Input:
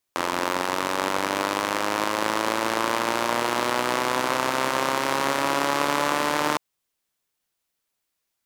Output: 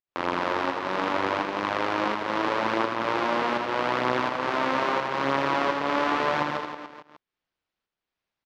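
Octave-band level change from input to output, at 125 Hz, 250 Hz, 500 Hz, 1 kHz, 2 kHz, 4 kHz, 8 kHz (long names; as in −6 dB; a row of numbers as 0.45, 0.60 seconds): −0.5 dB, −0.5 dB, −1.0 dB, −1.5 dB, −2.0 dB, −5.5 dB, below −15 dB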